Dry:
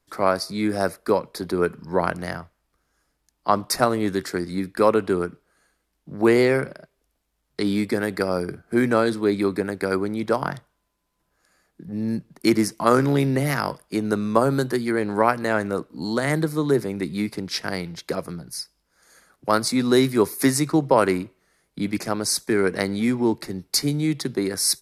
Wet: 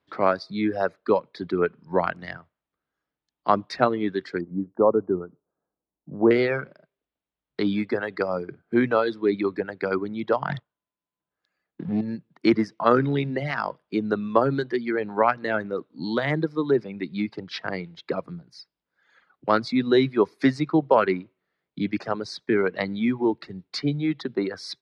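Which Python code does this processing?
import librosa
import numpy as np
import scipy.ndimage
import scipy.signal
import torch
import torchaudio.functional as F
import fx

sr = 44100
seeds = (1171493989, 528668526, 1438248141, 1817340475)

y = fx.lowpass(x, sr, hz=1000.0, slope=24, at=(4.41, 6.31))
y = fx.leveller(y, sr, passes=2, at=(10.49, 12.01))
y = fx.peak_eq(y, sr, hz=3600.0, db=7.0, octaves=0.36, at=(15.8, 16.31))
y = scipy.signal.sosfilt(scipy.signal.cheby1(3, 1.0, 3600.0, 'lowpass', fs=sr, output='sos'), y)
y = fx.dereverb_blind(y, sr, rt60_s=1.8)
y = scipy.signal.sosfilt(scipy.signal.butter(2, 110.0, 'highpass', fs=sr, output='sos'), y)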